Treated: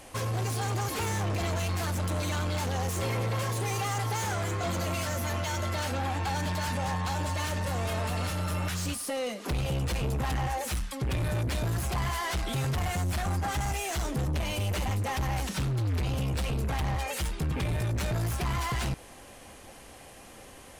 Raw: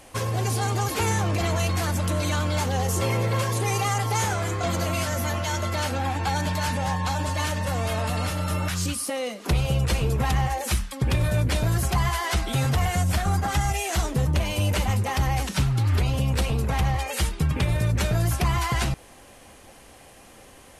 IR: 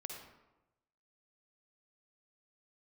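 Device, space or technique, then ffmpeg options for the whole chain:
saturation between pre-emphasis and de-emphasis: -af "highshelf=f=4.3k:g=9.5,asoftclip=type=tanh:threshold=-26dB,highshelf=f=4.3k:g=-9.5"

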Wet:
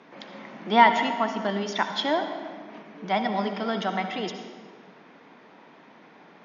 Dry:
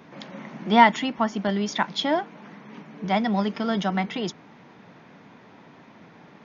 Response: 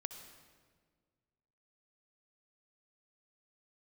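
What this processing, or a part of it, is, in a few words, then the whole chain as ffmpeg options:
supermarket ceiling speaker: -filter_complex "[0:a]highpass=270,lowpass=5.8k[a];[1:a]atrim=start_sample=2205[b];[a][b]afir=irnorm=-1:irlink=0,volume=2dB"

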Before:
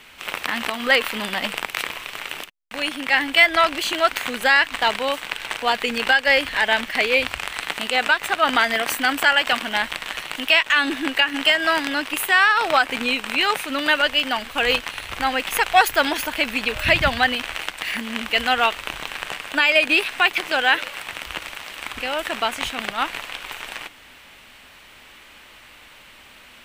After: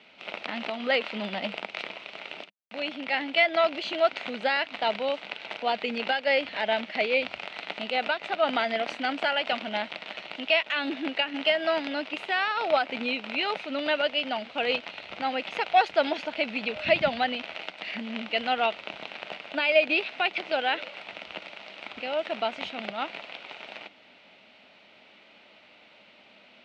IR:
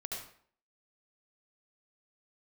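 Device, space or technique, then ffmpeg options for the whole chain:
kitchen radio: -af "highpass=190,equalizer=f=200:t=q:w=4:g=7,equalizer=f=630:t=q:w=4:g=7,equalizer=f=1.1k:t=q:w=4:g=-8,equalizer=f=1.7k:t=q:w=4:g=-9,equalizer=f=3.2k:t=q:w=4:g=-3,lowpass=f=4.3k:w=0.5412,lowpass=f=4.3k:w=1.3066,volume=-6dB"

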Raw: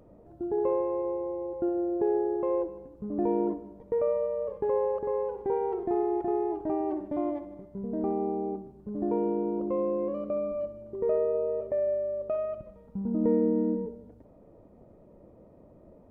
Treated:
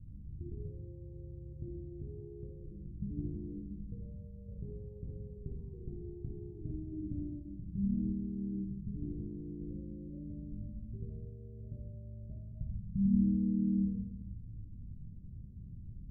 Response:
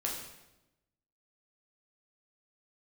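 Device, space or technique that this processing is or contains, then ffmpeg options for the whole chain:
club heard from the street: -filter_complex "[0:a]alimiter=level_in=0.5dB:limit=-24dB:level=0:latency=1,volume=-0.5dB,lowpass=f=140:w=0.5412,lowpass=f=140:w=1.3066[a];[1:a]atrim=start_sample=2205[b];[a][b]afir=irnorm=-1:irlink=0,volume=11.5dB"

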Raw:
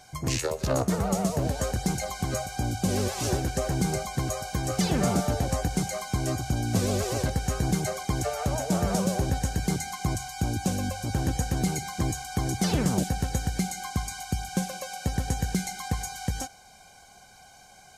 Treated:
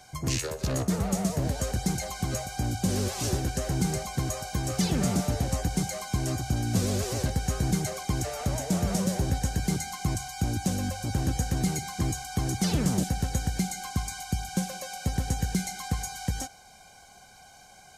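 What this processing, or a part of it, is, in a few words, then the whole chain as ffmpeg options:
one-band saturation: -filter_complex "[0:a]acrossover=split=320|2700[a][b][c];[b]asoftclip=type=tanh:threshold=-33.5dB[d];[a][d][c]amix=inputs=3:normalize=0"

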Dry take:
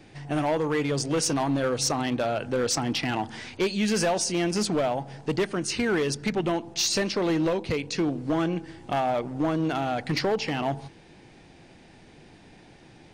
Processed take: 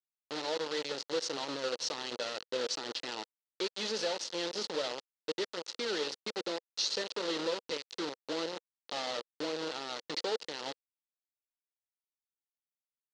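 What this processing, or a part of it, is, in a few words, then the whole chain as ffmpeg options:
hand-held game console: -af "acrusher=bits=3:mix=0:aa=0.000001,highpass=430,equalizer=f=490:t=q:w=4:g=5,equalizer=f=710:t=q:w=4:g=-9,equalizer=f=1.1k:t=q:w=4:g=-5,equalizer=f=1.6k:t=q:w=4:g=-5,equalizer=f=2.3k:t=q:w=4:g=-8,equalizer=f=4.2k:t=q:w=4:g=6,lowpass=f=5.8k:w=0.5412,lowpass=f=5.8k:w=1.3066,volume=-9dB"

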